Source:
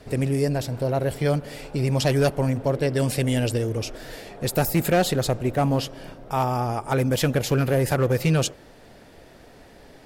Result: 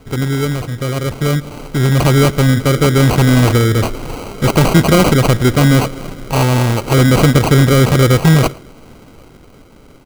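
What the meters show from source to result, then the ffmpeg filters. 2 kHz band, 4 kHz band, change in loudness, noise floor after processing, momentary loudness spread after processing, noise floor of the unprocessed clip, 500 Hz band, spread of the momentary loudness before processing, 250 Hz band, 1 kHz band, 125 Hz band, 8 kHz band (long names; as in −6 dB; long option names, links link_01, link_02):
+12.0 dB, +11.0 dB, +11.0 dB, −42 dBFS, 10 LU, −49 dBFS, +7.5 dB, 8 LU, +12.0 dB, +9.0 dB, +12.5 dB, +9.5 dB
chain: -filter_complex "[0:a]equalizer=frequency=740:width_type=o:width=0.87:gain=-12.5,dynaudnorm=framelen=570:gausssize=7:maxgain=8.5dB,asplit=2[link_01][link_02];[link_02]asoftclip=type=hard:threshold=-15.5dB,volume=-3dB[link_03];[link_01][link_03]amix=inputs=2:normalize=0,acrusher=samples=25:mix=1:aa=0.000001,asplit=2[link_04][link_05];[link_05]adelay=110.8,volume=-24dB,highshelf=frequency=4000:gain=-2.49[link_06];[link_04][link_06]amix=inputs=2:normalize=0,volume=2.5dB"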